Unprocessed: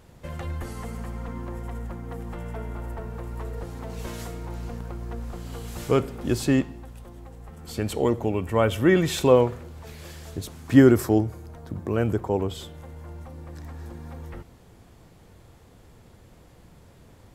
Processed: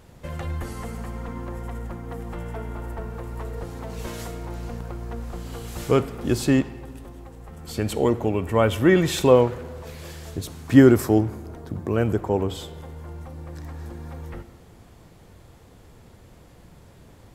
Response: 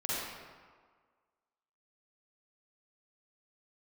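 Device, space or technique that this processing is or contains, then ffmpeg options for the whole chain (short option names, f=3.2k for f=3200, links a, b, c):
saturated reverb return: -filter_complex "[0:a]asplit=2[a][b];[1:a]atrim=start_sample=2205[c];[b][c]afir=irnorm=-1:irlink=0,asoftclip=type=tanh:threshold=-19dB,volume=-18.5dB[d];[a][d]amix=inputs=2:normalize=0,volume=1.5dB"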